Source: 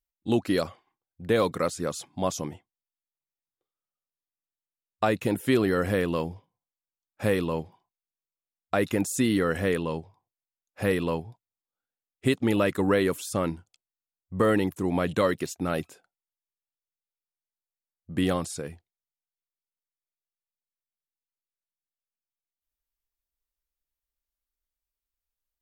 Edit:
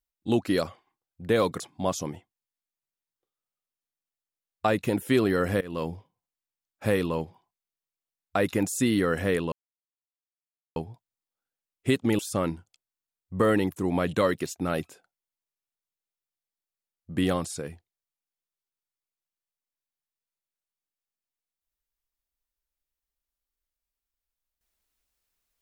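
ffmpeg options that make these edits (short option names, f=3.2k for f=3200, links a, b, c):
-filter_complex "[0:a]asplit=6[a][b][c][d][e][f];[a]atrim=end=1.602[g];[b]atrim=start=1.978:end=5.99,asetpts=PTS-STARTPTS,afade=t=out:st=4.008:d=0.004:c=hsin:silence=0.0707946[h];[c]atrim=start=5.99:end=9.9,asetpts=PTS-STARTPTS,afade=t=in:d=0.27:silence=0.0707946,afade=t=out:st=3.906:d=0.004:c=hsin[i];[d]atrim=start=9.9:end=11.14,asetpts=PTS-STARTPTS,volume=0[j];[e]atrim=start=11.14:end=12.572,asetpts=PTS-STARTPTS,afade=t=in:d=0.004:c=hsin[k];[f]atrim=start=13.188[l];[h][i][j][k]concat=n=4:v=0:a=1[m];[g][m]acrossfade=d=0.004:c1=hsin:c2=hsin[n];[n][l]acrossfade=d=0.004:c1=hsin:c2=hsin"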